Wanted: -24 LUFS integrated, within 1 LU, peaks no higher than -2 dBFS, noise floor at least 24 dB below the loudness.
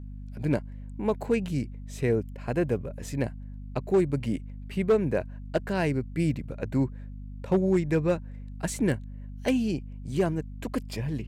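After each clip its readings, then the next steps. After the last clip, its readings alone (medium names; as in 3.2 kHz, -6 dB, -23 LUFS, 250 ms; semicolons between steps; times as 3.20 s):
clipped samples 0.4%; clipping level -16.0 dBFS; hum 50 Hz; highest harmonic 250 Hz; hum level -37 dBFS; loudness -29.0 LUFS; peak level -16.0 dBFS; loudness target -24.0 LUFS
-> clip repair -16 dBFS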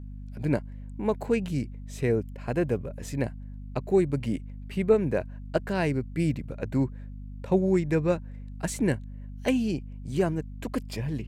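clipped samples 0.0%; hum 50 Hz; highest harmonic 250 Hz; hum level -37 dBFS
-> hum notches 50/100/150/200/250 Hz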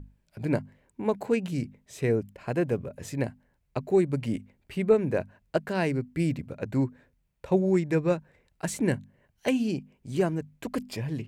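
hum not found; loudness -29.0 LUFS; peak level -10.5 dBFS; loudness target -24.0 LUFS
-> trim +5 dB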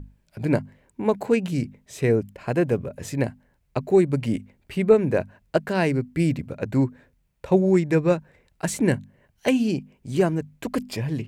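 loudness -24.0 LUFS; peak level -5.5 dBFS; noise floor -67 dBFS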